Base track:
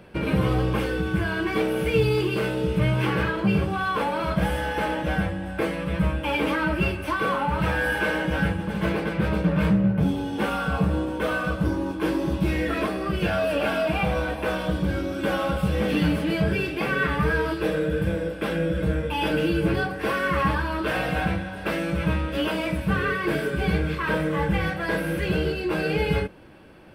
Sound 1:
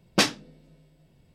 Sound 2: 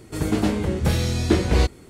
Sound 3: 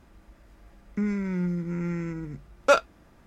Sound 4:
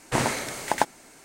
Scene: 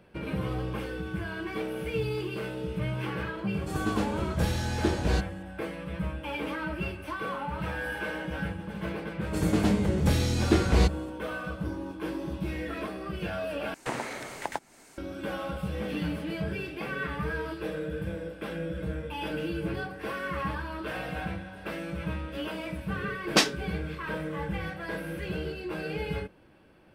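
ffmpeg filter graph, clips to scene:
ffmpeg -i bed.wav -i cue0.wav -i cue1.wav -i cue2.wav -i cue3.wav -filter_complex "[2:a]asplit=2[link_01][link_02];[0:a]volume=-9.5dB[link_03];[link_01]bandreject=frequency=2100:width=9.8[link_04];[4:a]acrossover=split=170|3400[link_05][link_06][link_07];[link_05]acompressor=threshold=-46dB:ratio=4[link_08];[link_06]acompressor=threshold=-26dB:ratio=4[link_09];[link_07]acompressor=threshold=-46dB:ratio=4[link_10];[link_08][link_09][link_10]amix=inputs=3:normalize=0[link_11];[1:a]acrossover=split=160[link_12][link_13];[link_13]adelay=320[link_14];[link_12][link_14]amix=inputs=2:normalize=0[link_15];[link_03]asplit=2[link_16][link_17];[link_16]atrim=end=13.744[link_18];[link_11]atrim=end=1.24,asetpts=PTS-STARTPTS,volume=-3.5dB[link_19];[link_17]atrim=start=14.976[link_20];[link_04]atrim=end=1.89,asetpts=PTS-STARTPTS,volume=-8dB,afade=type=in:duration=0.004:curve=hsin,afade=type=out:start_time=1.886:duration=0.004:curve=hsin,adelay=3540[link_21];[link_02]atrim=end=1.89,asetpts=PTS-STARTPTS,volume=-4dB,afade=type=in:duration=0.004:curve=hsin,afade=type=out:start_time=1.886:duration=0.004:curve=hsin,adelay=9210[link_22];[link_15]atrim=end=1.34,asetpts=PTS-STARTPTS,volume=-0.5dB,afade=type=in:duration=0.004:curve=hsin,afade=type=out:start_time=1.336:duration=0.004:curve=hsin,adelay=22860[link_23];[link_18][link_19]acrossfade=duration=0.004:curve1=hsin:curve2=hsin[link_24];[link_24][link_20]acrossfade=duration=0.004:curve1=hsin:curve2=hsin[link_25];[link_25][link_21][link_22][link_23]amix=inputs=4:normalize=0" out.wav

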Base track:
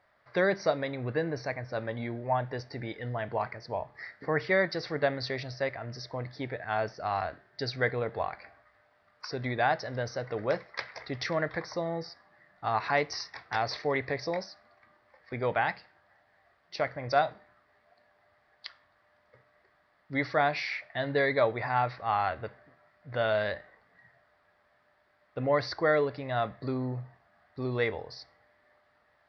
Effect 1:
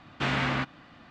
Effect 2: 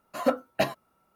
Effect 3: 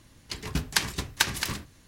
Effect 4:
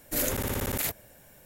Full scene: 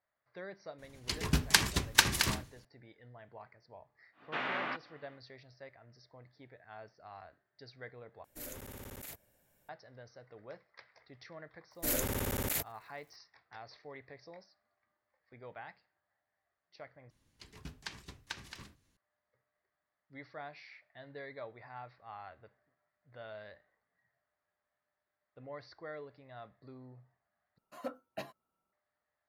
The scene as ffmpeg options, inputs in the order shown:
ffmpeg -i bed.wav -i cue0.wav -i cue1.wav -i cue2.wav -i cue3.wav -filter_complex "[3:a]asplit=2[link_01][link_02];[4:a]asplit=2[link_03][link_04];[0:a]volume=-20dB[link_05];[link_01]agate=range=-33dB:threshold=-52dB:ratio=3:release=100:detection=peak[link_06];[1:a]highpass=410,lowpass=2800[link_07];[link_04]aeval=exprs='sgn(val(0))*max(abs(val(0))-0.00299,0)':channel_layout=same[link_08];[link_02]acrossover=split=6700[link_09][link_10];[link_10]acompressor=threshold=-46dB:ratio=4:attack=1:release=60[link_11];[link_09][link_11]amix=inputs=2:normalize=0[link_12];[link_05]asplit=4[link_13][link_14][link_15][link_16];[link_13]atrim=end=8.244[link_17];[link_03]atrim=end=1.45,asetpts=PTS-STARTPTS,volume=-17.5dB[link_18];[link_14]atrim=start=9.686:end=17.104[link_19];[link_12]atrim=end=1.87,asetpts=PTS-STARTPTS,volume=-18dB[link_20];[link_15]atrim=start=18.966:end=27.584[link_21];[2:a]atrim=end=1.15,asetpts=PTS-STARTPTS,volume=-17dB[link_22];[link_16]atrim=start=28.726[link_23];[link_06]atrim=end=1.87,asetpts=PTS-STARTPTS,afade=type=in:duration=0.004:curve=hsin,afade=type=out:start_time=1.866:duration=0.004:curve=hsin,adelay=780[link_24];[link_07]atrim=end=1.1,asetpts=PTS-STARTPTS,volume=-6dB,afade=type=in:duration=0.1,afade=type=out:start_time=1:duration=0.1,adelay=4120[link_25];[link_08]atrim=end=1.45,asetpts=PTS-STARTPTS,volume=-4dB,afade=type=in:duration=0.004:curve=hsin,afade=type=out:start_time=1.446:duration=0.004:curve=hsin,adelay=11710[link_26];[link_17][link_18]acrossfade=duration=0.004:curve1=hsin:curve2=hsin[link_27];[link_27][link_19]acrossfade=duration=0.004:curve1=hsin:curve2=hsin[link_28];[link_28][link_20]acrossfade=duration=0.004:curve1=hsin:curve2=hsin[link_29];[link_29][link_21]acrossfade=duration=0.004:curve1=hsin:curve2=hsin[link_30];[link_30][link_22]acrossfade=duration=0.004:curve1=hsin:curve2=hsin[link_31];[link_31][link_23]acrossfade=duration=0.004:curve1=hsin:curve2=hsin[link_32];[link_32][link_24][link_25][link_26]amix=inputs=4:normalize=0" out.wav

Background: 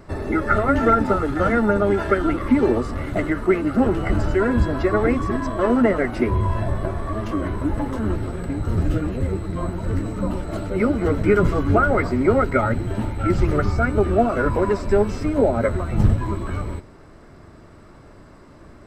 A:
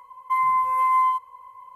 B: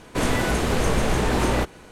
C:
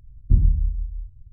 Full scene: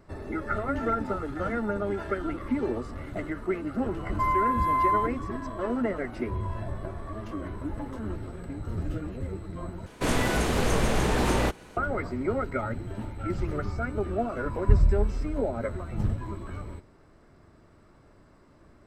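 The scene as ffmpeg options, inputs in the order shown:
ffmpeg -i bed.wav -i cue0.wav -i cue1.wav -i cue2.wav -filter_complex "[0:a]volume=-11dB,asplit=2[link_01][link_02];[link_01]atrim=end=9.864[link_03];[2:a]atrim=end=1.91,asetpts=PTS-STARTPTS,volume=-3dB[link_04];[link_02]atrim=start=11.766[link_05];[1:a]atrim=end=1.75,asetpts=PTS-STARTPTS,volume=-4.5dB,afade=type=in:duration=0.004:curve=hsin,afade=type=out:start_time=1.746:duration=0.004:curve=hsin,adelay=171549S[link_06];[3:a]atrim=end=1.32,asetpts=PTS-STARTPTS,volume=-3dB,afade=type=in:duration=0.004:curve=hsin,afade=type=out:start_time=1.316:duration=0.004:curve=hsin,adelay=14380[link_07];[link_03][link_04]acrossfade=duration=0.004:curve1=hsin:curve2=hsin[link_08];[link_08][link_05]acrossfade=duration=0.004:curve1=hsin:curve2=hsin[link_09];[link_09][link_06][link_07]amix=inputs=3:normalize=0" out.wav

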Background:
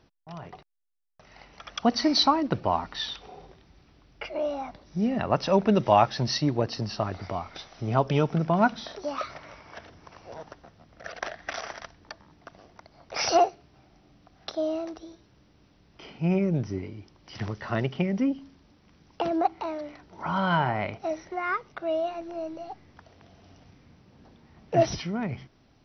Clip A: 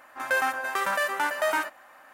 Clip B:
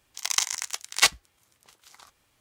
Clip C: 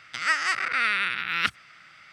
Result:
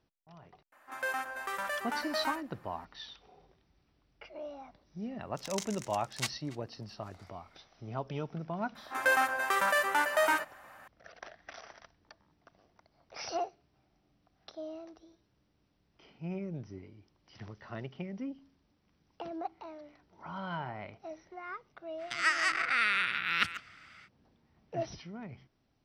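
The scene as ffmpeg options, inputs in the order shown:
ffmpeg -i bed.wav -i cue0.wav -i cue1.wav -i cue2.wav -filter_complex "[1:a]asplit=2[link_01][link_02];[0:a]volume=-14dB[link_03];[2:a]asplit=2[link_04][link_05];[link_05]adelay=285.7,volume=-19dB,highshelf=frequency=4000:gain=-6.43[link_06];[link_04][link_06]amix=inputs=2:normalize=0[link_07];[3:a]asplit=2[link_08][link_09];[link_09]adelay=140,highpass=300,lowpass=3400,asoftclip=type=hard:threshold=-14.5dB,volume=-11dB[link_10];[link_08][link_10]amix=inputs=2:normalize=0[link_11];[link_01]atrim=end=2.13,asetpts=PTS-STARTPTS,volume=-9.5dB,afade=type=in:duration=0.004:curve=hsin,afade=type=out:start_time=2.126:duration=0.004:curve=hsin,adelay=720[link_12];[link_07]atrim=end=2.4,asetpts=PTS-STARTPTS,volume=-16dB,afade=type=in:duration=0.004:curve=hsin,afade=type=out:start_time=2.396:duration=0.004:curve=hsin,adelay=5200[link_13];[link_02]atrim=end=2.13,asetpts=PTS-STARTPTS,volume=-1.5dB,afade=type=in:duration=0.004:curve=hsin,afade=type=out:start_time=2.126:duration=0.004:curve=hsin,adelay=8750[link_14];[link_11]atrim=end=2.12,asetpts=PTS-STARTPTS,volume=-4.5dB,afade=type=in:duration=0.05,afade=type=out:start_time=2.07:duration=0.05,adelay=21970[link_15];[link_03][link_12][link_13][link_14][link_15]amix=inputs=5:normalize=0" out.wav

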